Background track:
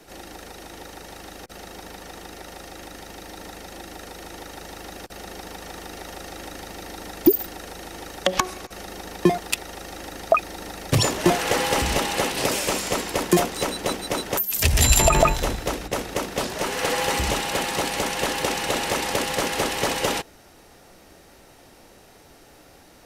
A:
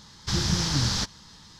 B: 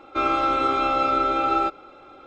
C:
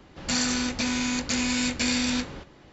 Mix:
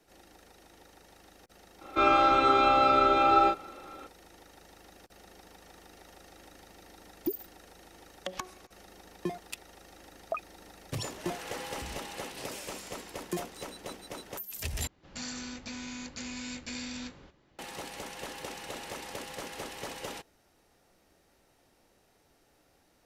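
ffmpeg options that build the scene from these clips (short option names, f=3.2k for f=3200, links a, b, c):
-filter_complex "[0:a]volume=-16.5dB[a];[2:a]asplit=2[b][c];[c]adelay=35,volume=-4dB[d];[b][d]amix=inputs=2:normalize=0[e];[a]asplit=2[f][g];[f]atrim=end=14.874[h];[3:a]atrim=end=2.72,asetpts=PTS-STARTPTS,volume=-14dB[i];[g]atrim=start=17.586[j];[e]atrim=end=2.26,asetpts=PTS-STARTPTS,volume=-1.5dB,afade=t=in:d=0.004:c=hsin,afade=t=out:st=2.256:d=0.004:c=hsin,adelay=1810[k];[h][i]acrossfade=d=0.004:c1=hsin:c2=hsin[l];[l][j]acrossfade=d=0.004:c1=hsin:c2=hsin[m];[m][k]amix=inputs=2:normalize=0"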